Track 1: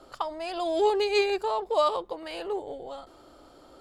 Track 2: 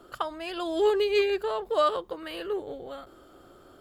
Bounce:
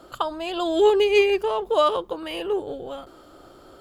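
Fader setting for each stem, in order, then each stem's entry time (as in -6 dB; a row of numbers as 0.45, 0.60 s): +1.0, +2.5 dB; 0.00, 0.00 s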